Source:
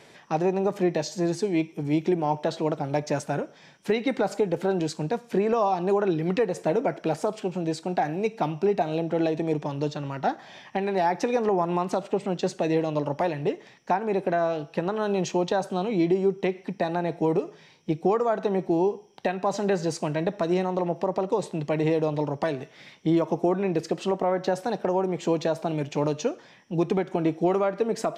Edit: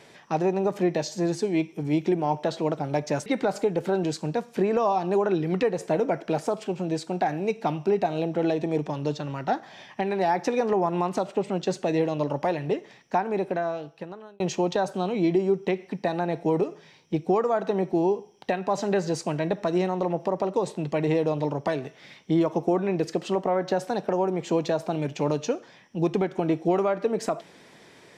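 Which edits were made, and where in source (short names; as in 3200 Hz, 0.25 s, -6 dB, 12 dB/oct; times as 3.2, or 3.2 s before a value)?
3.26–4.02 cut
14.01–15.16 fade out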